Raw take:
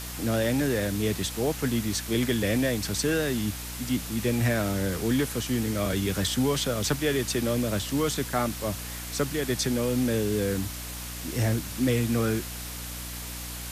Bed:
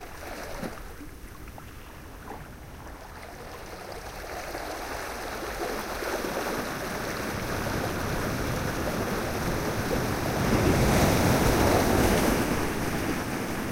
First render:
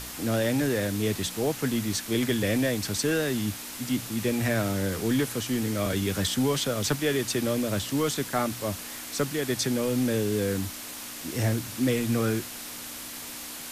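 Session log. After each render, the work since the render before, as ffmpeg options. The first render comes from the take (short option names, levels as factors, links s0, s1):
-af "bandreject=f=60:t=h:w=4,bandreject=f=120:t=h:w=4,bandreject=f=180:t=h:w=4"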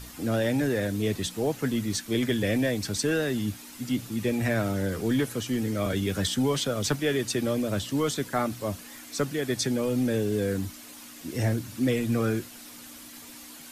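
-af "afftdn=nr=9:nf=-39"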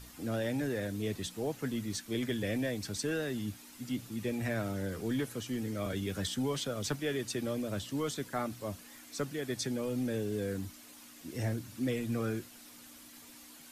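-af "volume=0.398"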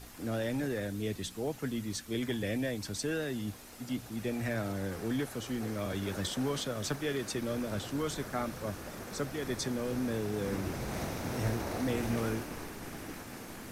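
-filter_complex "[1:a]volume=0.178[s0];[0:a][s0]amix=inputs=2:normalize=0"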